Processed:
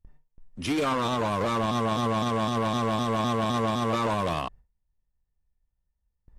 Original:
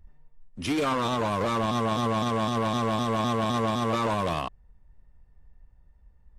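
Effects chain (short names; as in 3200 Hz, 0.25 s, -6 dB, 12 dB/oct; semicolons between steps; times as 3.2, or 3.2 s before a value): gate with hold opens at -43 dBFS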